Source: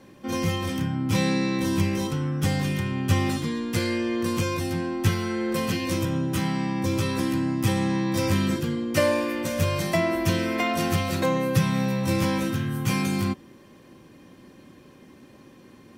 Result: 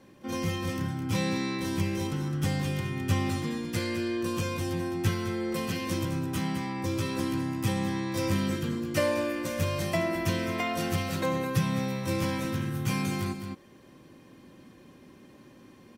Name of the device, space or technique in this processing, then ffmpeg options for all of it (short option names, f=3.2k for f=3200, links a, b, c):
ducked delay: -filter_complex "[0:a]asettb=1/sr,asplit=3[a][b][c];[a]atrim=end=3.964[d];[b]atrim=start=3.96:end=4.44,asetpts=PTS-STARTPTS,afade=t=in:d=0.004:c=qsin,afade=t=out:st=0.476:d=0.004:c=qsin,bandreject=f=2.1k:w=23[e];[c]atrim=start=4.436[f];[d][e]acrossfade=d=0.004:c1=hsin:c2=qsin[g];[g][f]acrossfade=d=0.004:c1=qsin:c2=hsin,asplit=3[h][i][j];[i]adelay=211,volume=-2.5dB[k];[j]apad=whole_len=713872[l];[k][l]sidechaincompress=threshold=-26dB:ratio=8:attack=5.4:release=950[m];[h][m]amix=inputs=2:normalize=0,volume=-5dB"